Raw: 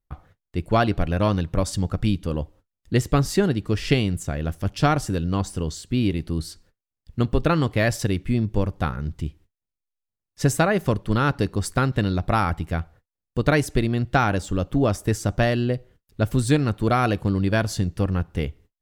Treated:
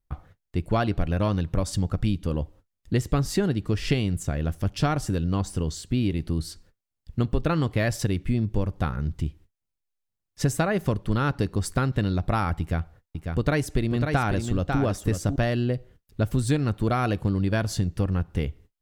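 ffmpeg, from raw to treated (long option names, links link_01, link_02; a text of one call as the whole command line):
ffmpeg -i in.wav -filter_complex "[0:a]asettb=1/sr,asplit=3[link_01][link_02][link_03];[link_01]atrim=end=12.604[link_04];[link_02]atrim=start=12.6:end=15.36,asetpts=PTS-STARTPTS,afade=type=in:duration=0.004:curve=qsin,afade=type=out:start_time=2.756:duration=0.004:curve=qsin,aecho=1:1:546:0.422,atrim=end_sample=121716[link_05];[link_03]atrim=start=15.356[link_06];[link_04][link_05]acrossfade=duration=0.004:curve1=hsin:curve2=qsin[link_07];[link_07][link_06]acrossfade=duration=0.004:curve1=qsin:curve2=hsin,lowshelf=frequency=200:gain=3.5,acompressor=threshold=-23dB:ratio=2" out.wav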